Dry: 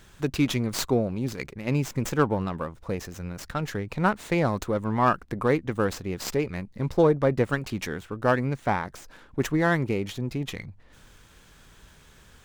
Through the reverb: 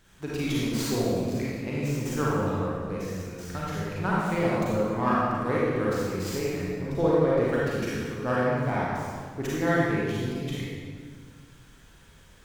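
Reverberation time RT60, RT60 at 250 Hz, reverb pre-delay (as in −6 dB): 1.7 s, 2.2 s, 34 ms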